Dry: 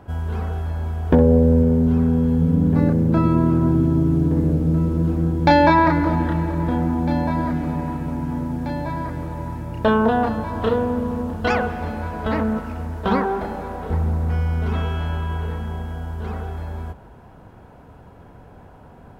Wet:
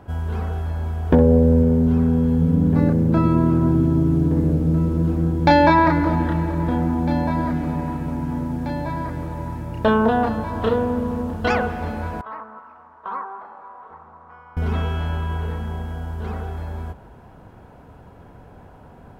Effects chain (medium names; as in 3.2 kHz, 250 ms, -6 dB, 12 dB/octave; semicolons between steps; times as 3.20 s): 12.21–14.57 s: band-pass filter 1.1 kHz, Q 4.8